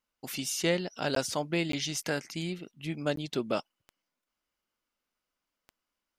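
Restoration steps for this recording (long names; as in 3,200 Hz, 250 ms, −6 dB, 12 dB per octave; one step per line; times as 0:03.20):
click removal
repair the gap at 0:01.15/0:01.72/0:03.16, 13 ms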